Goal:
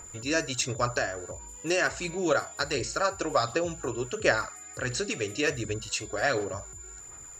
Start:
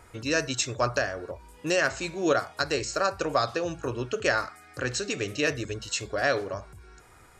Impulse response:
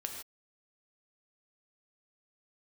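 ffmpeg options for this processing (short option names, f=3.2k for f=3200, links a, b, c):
-af "aeval=exprs='val(0)+0.00794*sin(2*PI*7100*n/s)':c=same,aphaser=in_gain=1:out_gain=1:delay=3:decay=0.37:speed=1.4:type=sinusoidal,volume=-2dB"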